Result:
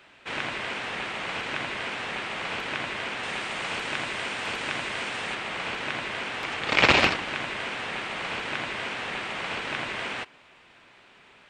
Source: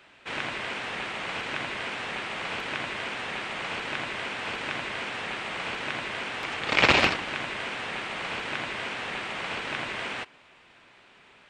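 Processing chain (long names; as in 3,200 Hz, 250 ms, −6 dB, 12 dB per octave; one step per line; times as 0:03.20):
0:03.23–0:05.35: high-shelf EQ 7,300 Hz +10.5 dB
level +1 dB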